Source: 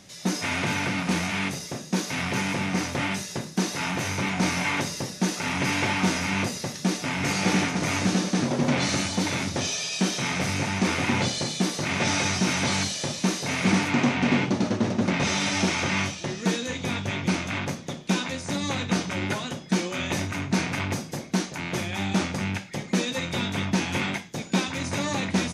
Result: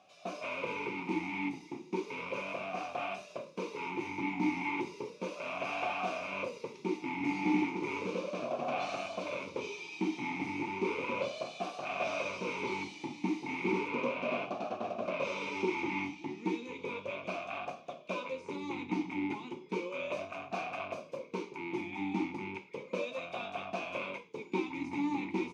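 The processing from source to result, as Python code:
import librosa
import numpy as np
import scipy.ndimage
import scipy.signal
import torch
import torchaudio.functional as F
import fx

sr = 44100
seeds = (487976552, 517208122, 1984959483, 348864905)

y = fx.vowel_sweep(x, sr, vowels='a-u', hz=0.34)
y = y * 10.0 ** (3.0 / 20.0)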